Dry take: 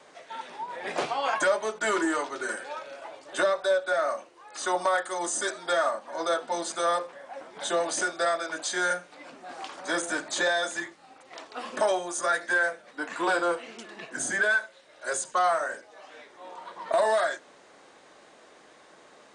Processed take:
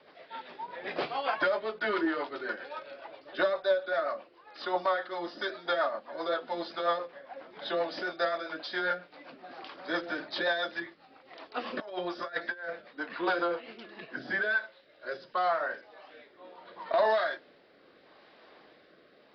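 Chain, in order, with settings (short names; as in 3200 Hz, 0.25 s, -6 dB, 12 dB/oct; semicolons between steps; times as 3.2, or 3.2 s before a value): 11.54–12.88 negative-ratio compressor -30 dBFS, ratio -0.5; rotary speaker horn 7.5 Hz, later 0.75 Hz, at 13.86; downsampling 11025 Hz; gain -1 dB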